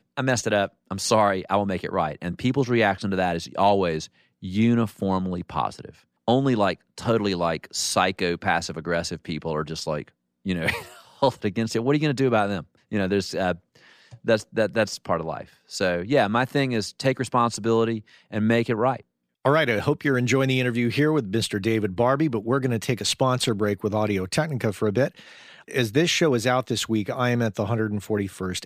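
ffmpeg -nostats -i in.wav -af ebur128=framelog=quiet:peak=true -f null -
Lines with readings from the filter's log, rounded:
Integrated loudness:
  I:         -24.0 LUFS
  Threshold: -34.3 LUFS
Loudness range:
  LRA:         3.1 LU
  Threshold: -44.3 LUFS
  LRA low:   -26.0 LUFS
  LRA high:  -22.9 LUFS
True peak:
  Peak:       -7.5 dBFS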